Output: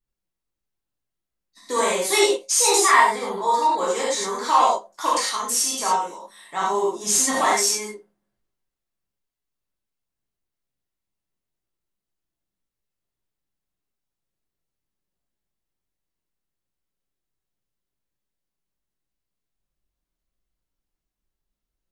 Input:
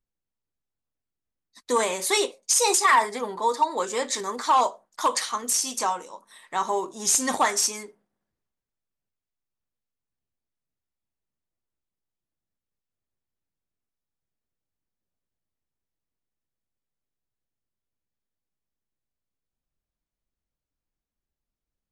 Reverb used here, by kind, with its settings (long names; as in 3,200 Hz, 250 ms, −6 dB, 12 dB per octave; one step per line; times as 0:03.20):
reverb whose tail is shaped and stops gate 130 ms flat, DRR −6.5 dB
level −4 dB